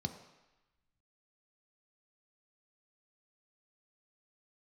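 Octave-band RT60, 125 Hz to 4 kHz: 0.85 s, 0.85 s, 0.95 s, 1.1 s, 1.2 s, 1.1 s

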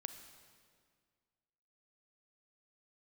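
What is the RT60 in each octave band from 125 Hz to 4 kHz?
2.1 s, 2.1 s, 2.0 s, 1.9 s, 1.8 s, 1.6 s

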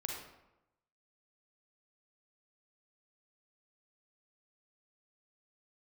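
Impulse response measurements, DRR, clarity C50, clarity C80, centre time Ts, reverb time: -0.5 dB, 1.5 dB, 4.5 dB, 51 ms, 0.95 s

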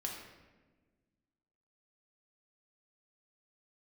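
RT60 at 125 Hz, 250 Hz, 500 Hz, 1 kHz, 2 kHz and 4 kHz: 2.0 s, 2.1 s, 1.6 s, 1.1 s, 1.1 s, 0.80 s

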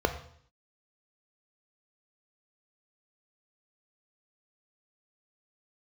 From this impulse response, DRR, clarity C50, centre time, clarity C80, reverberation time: 7.0 dB, 11.5 dB, 11 ms, 14.0 dB, 0.60 s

